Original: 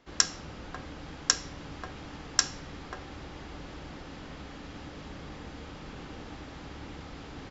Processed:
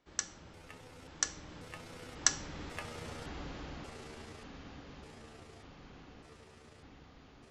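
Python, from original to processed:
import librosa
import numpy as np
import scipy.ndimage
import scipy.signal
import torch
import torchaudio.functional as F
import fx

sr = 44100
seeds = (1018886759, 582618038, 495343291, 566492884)

y = fx.pitch_trill(x, sr, semitones=8.0, every_ms=567)
y = fx.doppler_pass(y, sr, speed_mps=20, closest_m=17.0, pass_at_s=3.09)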